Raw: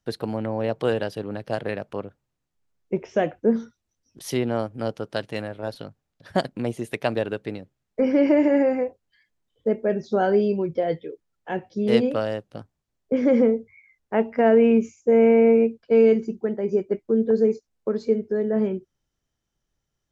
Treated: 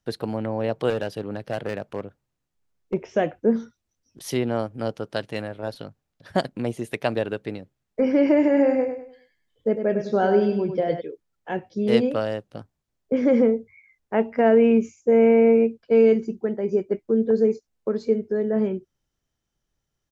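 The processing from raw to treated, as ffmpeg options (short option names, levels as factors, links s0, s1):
-filter_complex "[0:a]asettb=1/sr,asplit=3[s0][s1][s2];[s0]atrim=end=0.904[s3];[s1]atrim=start=0.9:end=2.94,asetpts=PTS-STARTPTS,afade=t=in:d=0.004:c=qsin,afade=t=out:st=2.036:d=0.004:c=qsin,asoftclip=type=hard:threshold=0.1[s4];[s2]atrim=start=2.936[s5];[s3][s4]acrossfade=d=0.004:c1=hsin:c2=qsin[s6];[s6][s5]acrossfade=d=0.004:c1=qsin:c2=hsin,asplit=3[s7][s8][s9];[s7]afade=t=out:st=8.56:d=0.02[s10];[s8]aecho=1:1:100|200|300|400:0.422|0.143|0.0487|0.0166,afade=t=in:st=8.56:d=0.02,afade=t=out:st=11:d=0.02[s11];[s9]afade=t=in:st=11:d=0.02[s12];[s10][s11][s12]amix=inputs=3:normalize=0"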